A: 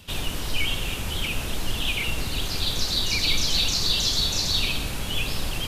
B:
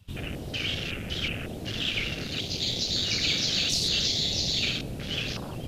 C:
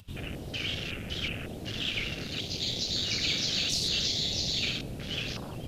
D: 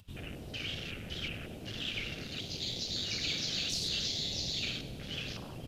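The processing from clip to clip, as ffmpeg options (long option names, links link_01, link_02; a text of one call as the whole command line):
ffmpeg -i in.wav -af "afftfilt=real='re*lt(hypot(re,im),0.282)':imag='im*lt(hypot(re,im),0.282)':win_size=1024:overlap=0.75,afwtdn=0.0224" out.wav
ffmpeg -i in.wav -af "acompressor=mode=upward:threshold=-46dB:ratio=2.5,volume=-3dB" out.wav
ffmpeg -i in.wav -af "aecho=1:1:98|196|294|392|490|588:0.178|0.103|0.0598|0.0347|0.0201|0.0117,volume=-5.5dB" out.wav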